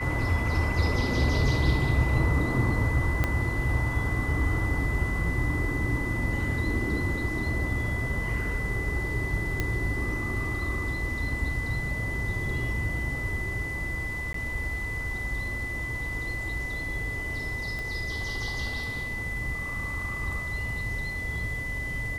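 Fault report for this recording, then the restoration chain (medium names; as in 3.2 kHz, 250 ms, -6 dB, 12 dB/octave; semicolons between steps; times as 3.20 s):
whine 2 kHz -32 dBFS
3.24 s: pop -12 dBFS
9.60 s: pop -13 dBFS
14.33–14.34 s: dropout 13 ms
17.79 s: pop -23 dBFS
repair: de-click; band-stop 2 kHz, Q 30; interpolate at 14.33 s, 13 ms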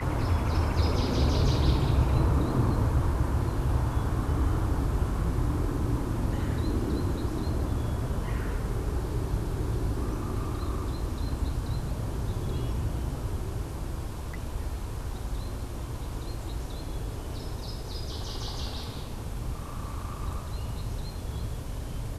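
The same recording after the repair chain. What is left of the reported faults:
3.24 s: pop
17.79 s: pop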